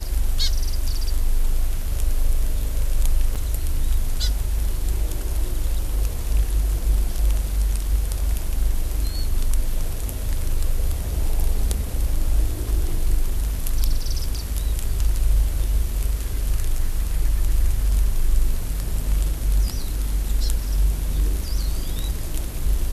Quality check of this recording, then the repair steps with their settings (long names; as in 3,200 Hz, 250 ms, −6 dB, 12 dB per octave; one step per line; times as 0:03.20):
0:03.35–0:03.36: drop-out 6 ms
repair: repair the gap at 0:03.35, 6 ms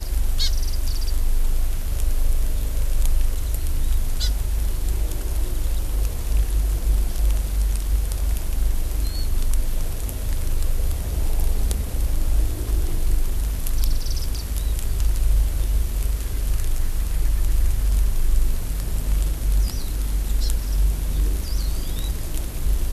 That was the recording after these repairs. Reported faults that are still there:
none of them is left